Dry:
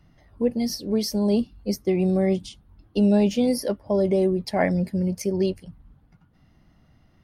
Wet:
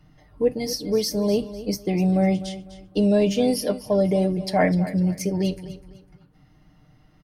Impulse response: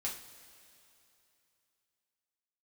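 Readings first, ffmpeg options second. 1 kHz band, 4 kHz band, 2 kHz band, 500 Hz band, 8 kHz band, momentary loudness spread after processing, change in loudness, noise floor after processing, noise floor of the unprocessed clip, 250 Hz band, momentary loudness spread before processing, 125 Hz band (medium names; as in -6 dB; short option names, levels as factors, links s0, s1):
+3.5 dB, +3.0 dB, +2.5 dB, +1.0 dB, +2.5 dB, 10 LU, +1.0 dB, -57 dBFS, -60 dBFS, 0.0 dB, 7 LU, +2.0 dB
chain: -filter_complex "[0:a]aecho=1:1:6.6:0.62,aecho=1:1:251|502|753:0.188|0.0565|0.017,asplit=2[s0][s1];[1:a]atrim=start_sample=2205,atrim=end_sample=3528[s2];[s1][s2]afir=irnorm=-1:irlink=0,volume=0.211[s3];[s0][s3]amix=inputs=2:normalize=0"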